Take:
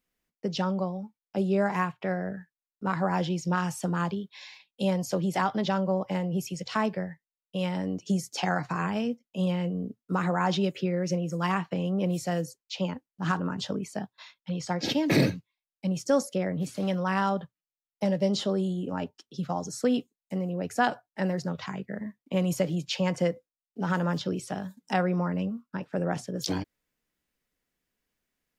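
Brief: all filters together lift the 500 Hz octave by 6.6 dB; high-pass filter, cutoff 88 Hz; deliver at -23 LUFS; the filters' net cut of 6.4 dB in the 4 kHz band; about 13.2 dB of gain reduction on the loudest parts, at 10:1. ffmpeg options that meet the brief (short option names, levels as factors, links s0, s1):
-af "highpass=88,equalizer=f=500:t=o:g=8,equalizer=f=4000:t=o:g=-9,acompressor=threshold=0.0447:ratio=10,volume=3.35"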